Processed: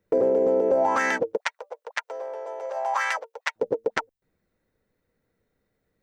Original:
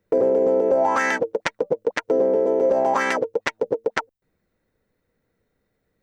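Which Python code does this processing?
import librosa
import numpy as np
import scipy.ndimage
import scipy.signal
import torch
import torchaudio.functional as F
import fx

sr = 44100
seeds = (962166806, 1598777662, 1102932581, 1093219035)

y = fx.highpass(x, sr, hz=750.0, slope=24, at=(1.37, 3.56))
y = F.gain(torch.from_numpy(y), -2.5).numpy()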